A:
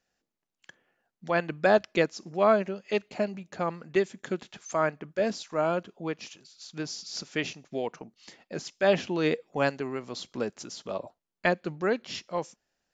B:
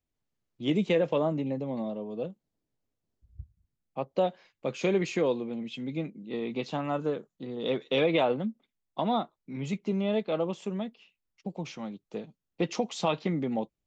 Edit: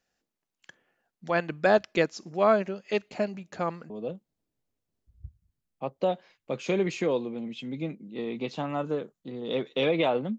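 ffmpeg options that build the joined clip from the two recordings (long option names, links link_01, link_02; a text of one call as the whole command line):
ffmpeg -i cue0.wav -i cue1.wav -filter_complex "[0:a]apad=whole_dur=10.38,atrim=end=10.38,atrim=end=3.902[link_01];[1:a]atrim=start=2.048:end=8.53[link_02];[link_01][link_02]acrossfade=duration=0.004:curve1=hsin:curve2=hsin" out.wav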